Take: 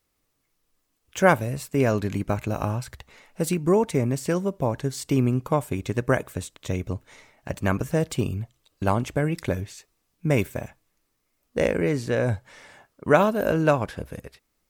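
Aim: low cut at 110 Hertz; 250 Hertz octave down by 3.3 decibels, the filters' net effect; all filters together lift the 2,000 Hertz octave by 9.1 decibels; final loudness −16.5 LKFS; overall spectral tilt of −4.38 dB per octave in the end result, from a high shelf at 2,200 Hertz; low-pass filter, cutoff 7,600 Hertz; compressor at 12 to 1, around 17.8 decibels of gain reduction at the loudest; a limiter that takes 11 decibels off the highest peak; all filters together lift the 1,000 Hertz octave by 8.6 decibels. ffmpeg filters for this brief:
ffmpeg -i in.wav -af "highpass=110,lowpass=7600,equalizer=frequency=250:width_type=o:gain=-5,equalizer=frequency=1000:width_type=o:gain=8.5,equalizer=frequency=2000:width_type=o:gain=6,highshelf=frequency=2200:gain=5.5,acompressor=threshold=-24dB:ratio=12,volume=17.5dB,alimiter=limit=-2.5dB:level=0:latency=1" out.wav

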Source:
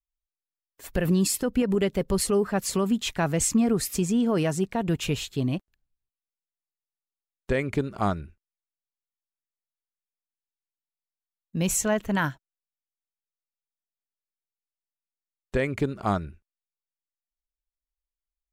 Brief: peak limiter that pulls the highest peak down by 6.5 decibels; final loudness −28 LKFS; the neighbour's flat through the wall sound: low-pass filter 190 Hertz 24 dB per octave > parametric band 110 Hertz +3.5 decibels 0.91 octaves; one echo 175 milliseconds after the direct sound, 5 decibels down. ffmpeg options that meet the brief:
ffmpeg -i in.wav -af "alimiter=limit=-20.5dB:level=0:latency=1,lowpass=frequency=190:width=0.5412,lowpass=frequency=190:width=1.3066,equalizer=frequency=110:width_type=o:width=0.91:gain=3.5,aecho=1:1:175:0.562,volume=6.5dB" out.wav

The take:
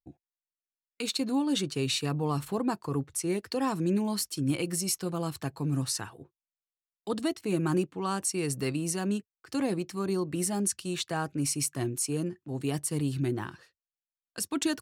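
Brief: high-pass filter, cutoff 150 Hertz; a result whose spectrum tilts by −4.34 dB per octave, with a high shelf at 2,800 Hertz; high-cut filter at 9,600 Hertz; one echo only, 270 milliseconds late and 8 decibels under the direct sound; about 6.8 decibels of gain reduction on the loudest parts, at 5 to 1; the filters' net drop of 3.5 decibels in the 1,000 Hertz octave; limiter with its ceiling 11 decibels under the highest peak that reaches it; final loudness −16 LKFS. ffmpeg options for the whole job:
ffmpeg -i in.wav -af "highpass=150,lowpass=9600,equalizer=frequency=1000:width_type=o:gain=-5,highshelf=frequency=2800:gain=4.5,acompressor=threshold=-31dB:ratio=5,alimiter=level_in=5.5dB:limit=-24dB:level=0:latency=1,volume=-5.5dB,aecho=1:1:270:0.398,volume=22.5dB" out.wav

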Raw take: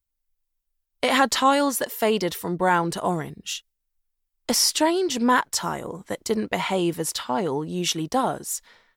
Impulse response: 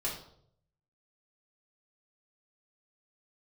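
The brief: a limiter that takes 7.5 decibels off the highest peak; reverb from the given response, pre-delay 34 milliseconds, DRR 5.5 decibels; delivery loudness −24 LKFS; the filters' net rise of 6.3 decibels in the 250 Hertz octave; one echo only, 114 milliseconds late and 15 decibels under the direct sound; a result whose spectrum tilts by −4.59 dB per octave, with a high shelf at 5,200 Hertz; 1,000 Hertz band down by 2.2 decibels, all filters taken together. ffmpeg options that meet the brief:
-filter_complex "[0:a]equalizer=frequency=250:width_type=o:gain=8,equalizer=frequency=1000:width_type=o:gain=-3,highshelf=frequency=5200:gain=-5,alimiter=limit=-12.5dB:level=0:latency=1,aecho=1:1:114:0.178,asplit=2[link_01][link_02];[1:a]atrim=start_sample=2205,adelay=34[link_03];[link_02][link_03]afir=irnorm=-1:irlink=0,volume=-9.5dB[link_04];[link_01][link_04]amix=inputs=2:normalize=0,volume=-1.5dB"

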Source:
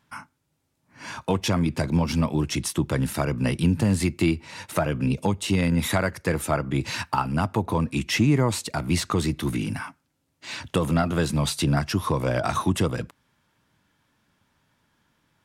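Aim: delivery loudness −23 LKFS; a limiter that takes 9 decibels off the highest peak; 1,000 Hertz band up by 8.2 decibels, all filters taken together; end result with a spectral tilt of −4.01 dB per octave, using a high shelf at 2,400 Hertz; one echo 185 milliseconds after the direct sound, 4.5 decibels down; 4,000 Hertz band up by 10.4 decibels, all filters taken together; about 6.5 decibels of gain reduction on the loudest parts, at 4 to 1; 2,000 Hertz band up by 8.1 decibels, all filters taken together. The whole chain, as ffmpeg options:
ffmpeg -i in.wav -af "equalizer=frequency=1000:width_type=o:gain=8,equalizer=frequency=2000:width_type=o:gain=3.5,highshelf=frequency=2400:gain=4.5,equalizer=frequency=4000:width_type=o:gain=7.5,acompressor=threshold=-21dB:ratio=4,alimiter=limit=-16dB:level=0:latency=1,aecho=1:1:185:0.596,volume=3dB" out.wav

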